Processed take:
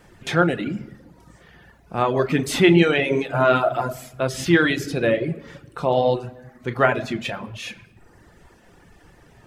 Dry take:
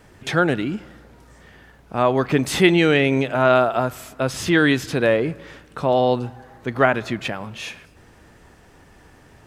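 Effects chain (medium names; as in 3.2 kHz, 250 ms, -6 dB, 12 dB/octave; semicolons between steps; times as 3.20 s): 4.70–5.29 s: peaking EQ 980 Hz -9 dB 0.61 oct; reverberation RT60 1.1 s, pre-delay 6 ms, DRR 4 dB; reverb removal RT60 0.86 s; trim -1.5 dB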